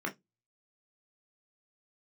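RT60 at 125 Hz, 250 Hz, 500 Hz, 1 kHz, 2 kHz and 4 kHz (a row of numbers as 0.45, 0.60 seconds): 0.30, 0.25, 0.15, 0.15, 0.15, 0.15 seconds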